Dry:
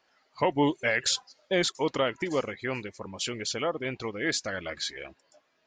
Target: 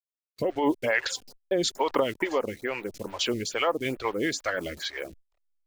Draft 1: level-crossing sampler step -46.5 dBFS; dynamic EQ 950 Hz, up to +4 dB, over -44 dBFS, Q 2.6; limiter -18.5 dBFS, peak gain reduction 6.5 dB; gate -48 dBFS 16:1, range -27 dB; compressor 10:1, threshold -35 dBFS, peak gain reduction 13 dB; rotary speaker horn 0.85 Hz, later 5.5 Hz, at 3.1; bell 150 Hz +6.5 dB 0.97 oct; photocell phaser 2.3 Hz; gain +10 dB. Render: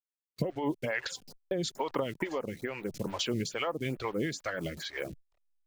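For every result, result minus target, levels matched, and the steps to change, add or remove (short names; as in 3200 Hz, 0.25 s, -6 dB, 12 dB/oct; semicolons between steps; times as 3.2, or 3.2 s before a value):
125 Hz band +9.0 dB; compressor: peak gain reduction +9 dB
change: bell 150 Hz -5 dB 0.97 oct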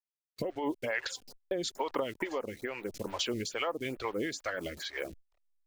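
compressor: peak gain reduction +9 dB
change: compressor 10:1, threshold -25 dBFS, peak gain reduction 4 dB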